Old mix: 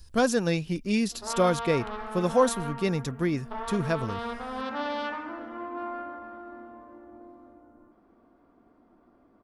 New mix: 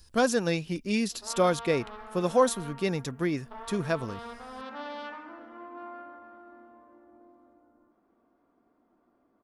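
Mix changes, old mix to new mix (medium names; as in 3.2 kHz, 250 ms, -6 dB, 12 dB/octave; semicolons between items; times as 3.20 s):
background -7.0 dB; master: add bass shelf 130 Hz -9 dB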